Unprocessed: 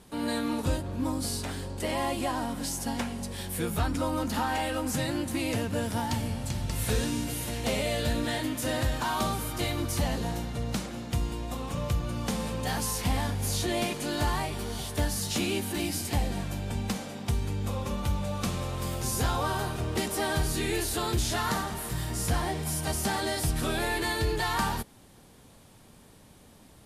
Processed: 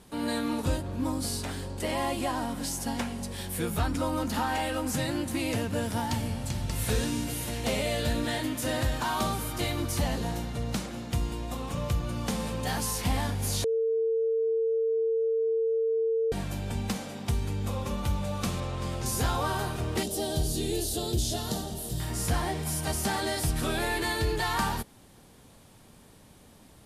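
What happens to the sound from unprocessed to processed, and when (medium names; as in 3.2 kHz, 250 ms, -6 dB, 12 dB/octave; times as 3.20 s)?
13.64–16.32 s: bleep 451 Hz -23.5 dBFS
18.60–19.06 s: distance through air 58 m
20.03–22.00 s: high-order bell 1.5 kHz -15 dB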